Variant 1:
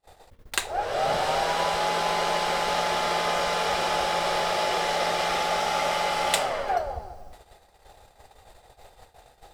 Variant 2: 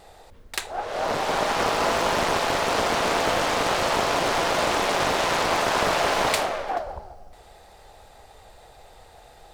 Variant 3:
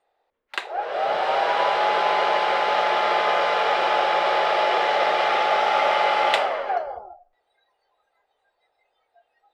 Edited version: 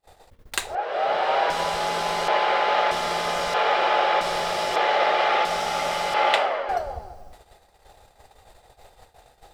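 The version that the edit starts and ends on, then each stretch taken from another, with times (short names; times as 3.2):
1
0.75–1.5 from 3
2.28–2.91 from 3
3.54–4.21 from 3
4.76–5.45 from 3
6.14–6.69 from 3
not used: 2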